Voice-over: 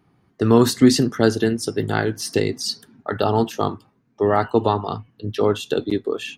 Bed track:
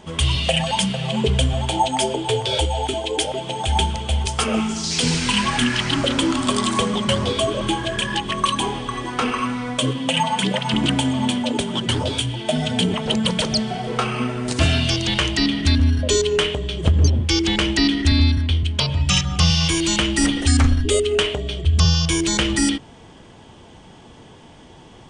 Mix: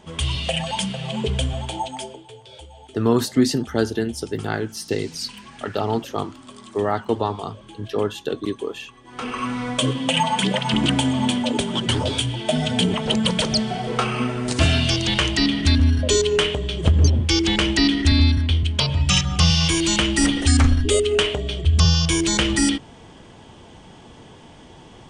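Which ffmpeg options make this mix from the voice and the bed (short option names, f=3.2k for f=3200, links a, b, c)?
-filter_complex "[0:a]adelay=2550,volume=-4dB[a];[1:a]volume=17.5dB,afade=t=out:st=1.49:d=0.79:silence=0.133352,afade=t=in:st=9.04:d=0.58:silence=0.0794328[b];[a][b]amix=inputs=2:normalize=0"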